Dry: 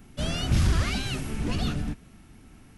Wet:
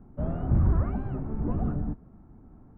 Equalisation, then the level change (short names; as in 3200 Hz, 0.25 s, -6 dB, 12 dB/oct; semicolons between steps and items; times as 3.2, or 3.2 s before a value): LPF 1100 Hz 24 dB/oct; air absorption 110 m; 0.0 dB